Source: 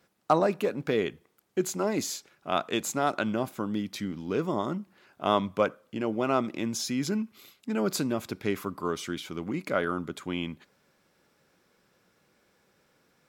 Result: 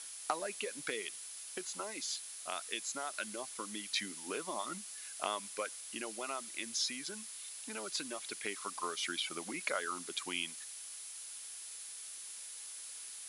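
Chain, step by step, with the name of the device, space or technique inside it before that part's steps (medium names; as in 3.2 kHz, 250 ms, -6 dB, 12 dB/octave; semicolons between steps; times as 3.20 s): reverb removal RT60 1.7 s; medium wave at night (band-pass 200–3600 Hz; compression, threshold -35 dBFS, peak gain reduction 17.5 dB; tremolo 0.21 Hz, depth 45%; whistle 10 kHz -62 dBFS; white noise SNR 17 dB); steep low-pass 10 kHz 48 dB/octave; tilt EQ +4.5 dB/octave; trim +2.5 dB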